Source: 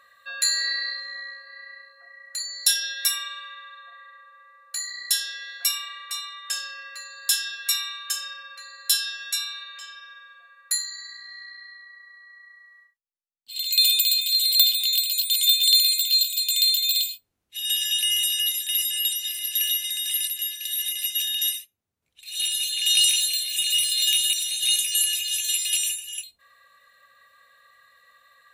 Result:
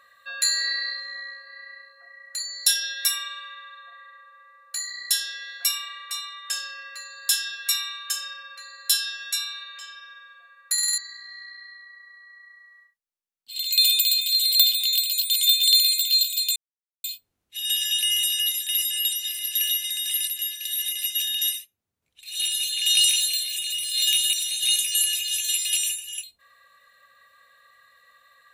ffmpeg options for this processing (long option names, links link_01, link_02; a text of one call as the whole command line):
ffmpeg -i in.wav -filter_complex "[0:a]asplit=3[link_01][link_02][link_03];[link_01]afade=type=out:start_time=23.46:duration=0.02[link_04];[link_02]acompressor=threshold=-25dB:ratio=5:attack=3.2:release=140:knee=1:detection=peak,afade=type=in:start_time=23.46:duration=0.02,afade=type=out:start_time=23.93:duration=0.02[link_05];[link_03]afade=type=in:start_time=23.93:duration=0.02[link_06];[link_04][link_05][link_06]amix=inputs=3:normalize=0,asplit=8[link_07][link_08][link_09][link_10][link_11][link_12][link_13][link_14];[link_07]atrim=end=10.782[link_15];[link_08]atrim=start=10.728:end=10.782[link_16];[link_09]atrim=start=10.728:end=10.782[link_17];[link_10]atrim=start=10.728:end=10.782[link_18];[link_11]atrim=start=10.728:end=10.782[link_19];[link_12]atrim=start=10.978:end=16.56,asetpts=PTS-STARTPTS,afade=type=out:start_time=5.578:duration=0.004:curve=hsin[link_20];[link_13]atrim=start=16.56:end=17.04,asetpts=PTS-STARTPTS,volume=0[link_21];[link_14]atrim=start=17.04,asetpts=PTS-STARTPTS,afade=type=in:duration=0.004:curve=hsin[link_22];[link_15][link_16]acrossfade=duration=0.004:curve1=hsin:curve2=hsin[link_23];[link_23][link_17]acrossfade=duration=0.004:curve1=hsin:curve2=hsin[link_24];[link_24][link_18]acrossfade=duration=0.004:curve1=hsin:curve2=hsin[link_25];[link_25][link_19]acrossfade=duration=0.004:curve1=hsin:curve2=hsin[link_26];[link_20][link_21][link_22]concat=n=3:v=0:a=1[link_27];[link_26][link_27]acrossfade=duration=0.004:curve1=hsin:curve2=hsin" out.wav